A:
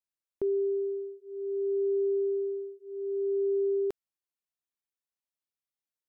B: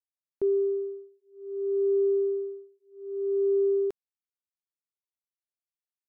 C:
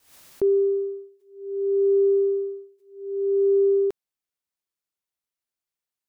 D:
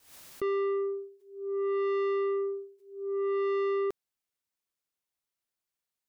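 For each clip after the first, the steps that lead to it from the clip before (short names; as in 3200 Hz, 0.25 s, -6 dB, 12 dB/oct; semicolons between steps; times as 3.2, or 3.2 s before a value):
upward expander 2.5:1, over -40 dBFS; gain +4 dB
backwards sustainer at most 110 dB/s; gain +5 dB
soft clip -27.5 dBFS, distortion -8 dB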